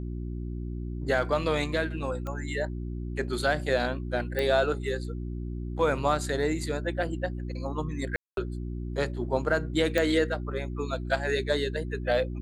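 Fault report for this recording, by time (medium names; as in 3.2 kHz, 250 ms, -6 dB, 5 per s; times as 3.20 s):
hum 60 Hz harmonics 6 -34 dBFS
2.27 s: pop -23 dBFS
4.39 s: pop -16 dBFS
8.16–8.37 s: dropout 212 ms
9.98 s: pop -12 dBFS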